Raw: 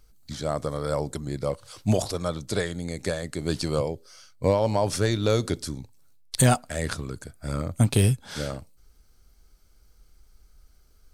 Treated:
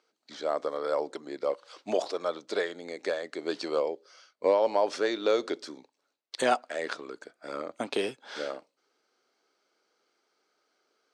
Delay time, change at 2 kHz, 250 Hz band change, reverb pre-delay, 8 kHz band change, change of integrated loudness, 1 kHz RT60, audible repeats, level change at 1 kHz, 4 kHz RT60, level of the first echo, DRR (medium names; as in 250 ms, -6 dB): no echo, -1.5 dB, -9.0 dB, no reverb, -15.0 dB, -4.0 dB, no reverb, no echo, -0.5 dB, no reverb, no echo, no reverb